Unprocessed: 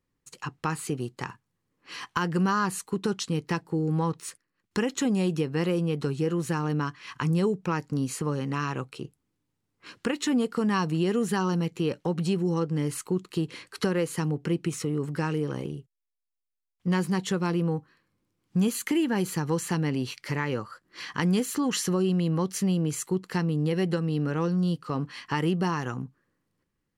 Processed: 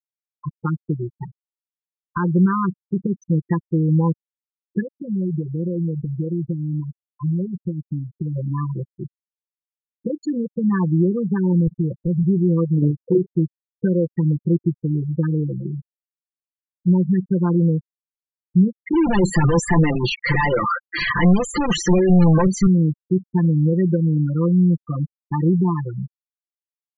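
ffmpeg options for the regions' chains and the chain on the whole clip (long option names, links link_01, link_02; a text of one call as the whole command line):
ffmpeg -i in.wav -filter_complex "[0:a]asettb=1/sr,asplit=3[link_01][link_02][link_03];[link_01]atrim=end=4.804[link_04];[link_02]atrim=start=4.8:end=8.36,asetpts=PTS-STARTPTS,afade=type=in:duration=0.004:curve=qsin,afade=type=out:start_time=3.556:duration=0.004:curve=qsin,bass=frequency=250:gain=0,treble=frequency=4000:gain=-14,acompressor=threshold=-27dB:ratio=10:attack=3.2:release=140:knee=1:detection=peak[link_05];[link_03]atrim=start=8.356[link_06];[link_04][link_05]acrossfade=duration=0.004:curve1=hsin:curve2=qsin[link_07];[link_07][link_06]acrossfade=duration=0.004:curve1=qsin:curve2=hsin,asettb=1/sr,asplit=3[link_08][link_09][link_10];[link_08]atrim=end=11.674[link_11];[link_09]atrim=start=11.67:end=12.23,asetpts=PTS-STARTPTS,afade=type=in:duration=0.004:curve=qsin,afade=type=out:start_time=0.556:duration=0.004:curve=qsin,aemphasis=mode=reproduction:type=bsi,acompressor=threshold=-29dB:ratio=2.5:attack=3.2:release=140:knee=1:detection=peak[link_12];[link_10]atrim=start=12.226[link_13];[link_11][link_12]acrossfade=duration=0.004:curve1=hsin:curve2=qsin[link_14];[link_14][link_13]acrossfade=duration=0.004:curve1=qsin:curve2=hsin,asettb=1/sr,asplit=3[link_15][link_16][link_17];[link_15]atrim=end=12.784[link_18];[link_16]atrim=start=12.78:end=13.3,asetpts=PTS-STARTPTS,afade=type=in:duration=0.004:curve=qsin,afade=type=out:start_time=0.516:duration=0.004:curve=qsin,equalizer=frequency=560:width_type=o:width=1.6:gain=12.5,acompressor=threshold=-23dB:ratio=2:attack=3.2:release=140:knee=1:detection=peak,asplit=2[link_19][link_20];[link_20]adelay=41,volume=-2dB[link_21];[link_19][link_21]amix=inputs=2:normalize=0,atrim=end_sample=22932[link_22];[link_17]atrim=start=13.296[link_23];[link_18][link_22]acrossfade=duration=0.004:curve1=hsin:curve2=qsin[link_24];[link_24][link_23]acrossfade=duration=0.004:curve1=qsin:curve2=hsin,asettb=1/sr,asplit=3[link_25][link_26][link_27];[link_25]atrim=end=18.934[link_28];[link_26]atrim=start=18.93:end=22.67,asetpts=PTS-STARTPTS,afade=type=in:duration=0.004:curve=qsin,afade=type=out:start_time=3.736:duration=0.004:curve=qsin,asplit=2[link_29][link_30];[link_30]highpass=frequency=720:poles=1,volume=36dB,asoftclip=type=tanh:threshold=-11dB[link_31];[link_29][link_31]amix=inputs=2:normalize=0,lowpass=frequency=3700:poles=1,volume=-6dB,asoftclip=type=hard:threshold=-20.5dB[link_32];[link_27]atrim=start=22.666[link_33];[link_28][link_32]acrossfade=duration=0.004:curve1=hsin:curve2=qsin[link_34];[link_34][link_33]acrossfade=duration=0.004:curve1=qsin:curve2=hsin,lowshelf=frequency=220:gain=9.5,aecho=1:1:5.8:0.69,afftfilt=real='re*gte(hypot(re,im),0.178)':imag='im*gte(hypot(re,im),0.178)':win_size=1024:overlap=0.75" out.wav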